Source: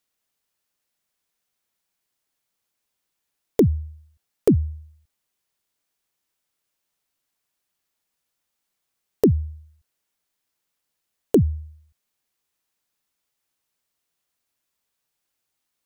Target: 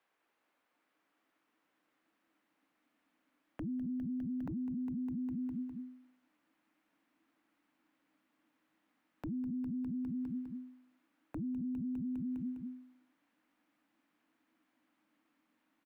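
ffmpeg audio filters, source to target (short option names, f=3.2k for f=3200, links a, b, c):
-filter_complex "[0:a]asubboost=boost=9:cutoff=170,aecho=1:1:203|406|609|812|1015|1218:0.398|0.207|0.108|0.056|0.0291|0.0151,acompressor=threshold=-26dB:ratio=6,afreqshift=-330,acrossover=split=290 2400:gain=0.0708 1 0.0708[a][b][c];[a][b][c]amix=inputs=3:normalize=0,alimiter=level_in=19dB:limit=-24dB:level=0:latency=1:release=16,volume=-19dB,volume=9dB"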